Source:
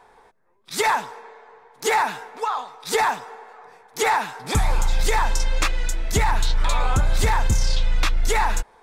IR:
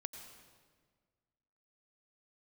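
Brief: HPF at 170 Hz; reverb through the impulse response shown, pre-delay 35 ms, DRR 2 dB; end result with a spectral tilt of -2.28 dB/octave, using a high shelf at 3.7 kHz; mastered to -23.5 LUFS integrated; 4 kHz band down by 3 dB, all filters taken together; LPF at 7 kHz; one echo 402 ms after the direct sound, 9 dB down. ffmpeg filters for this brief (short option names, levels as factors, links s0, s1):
-filter_complex "[0:a]highpass=170,lowpass=7000,highshelf=f=3700:g=8,equalizer=f=4000:t=o:g=-8.5,aecho=1:1:402:0.355,asplit=2[s0][s1];[1:a]atrim=start_sample=2205,adelay=35[s2];[s1][s2]afir=irnorm=-1:irlink=0,volume=1.06[s3];[s0][s3]amix=inputs=2:normalize=0,volume=0.944"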